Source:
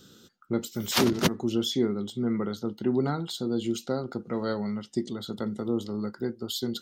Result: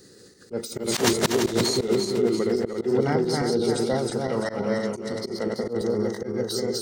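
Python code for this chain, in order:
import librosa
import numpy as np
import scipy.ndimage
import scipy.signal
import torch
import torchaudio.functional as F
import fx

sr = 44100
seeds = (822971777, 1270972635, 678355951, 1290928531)

y = fx.reverse_delay_fb(x, sr, ms=171, feedback_pct=64, wet_db=-2)
y = fx.auto_swell(y, sr, attack_ms=107.0)
y = fx.formant_shift(y, sr, semitones=4)
y = y * 10.0 ** (3.0 / 20.0)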